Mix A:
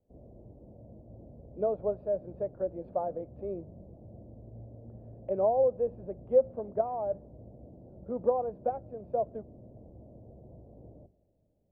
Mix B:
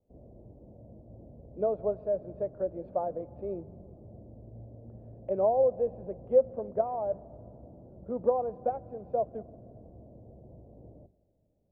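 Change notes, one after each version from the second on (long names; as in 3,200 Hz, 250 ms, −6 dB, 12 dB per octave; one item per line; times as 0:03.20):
speech: send on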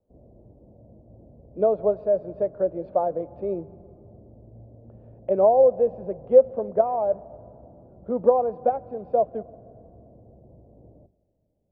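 speech +7.5 dB
master: remove high-frequency loss of the air 180 metres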